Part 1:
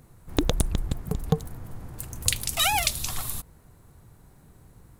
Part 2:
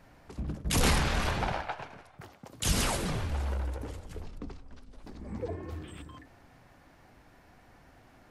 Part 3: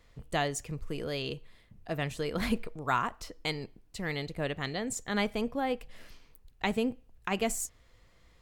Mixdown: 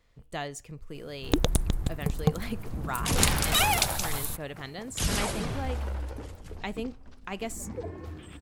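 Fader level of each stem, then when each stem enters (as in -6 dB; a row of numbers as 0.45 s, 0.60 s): -1.0 dB, -0.5 dB, -5.0 dB; 0.95 s, 2.35 s, 0.00 s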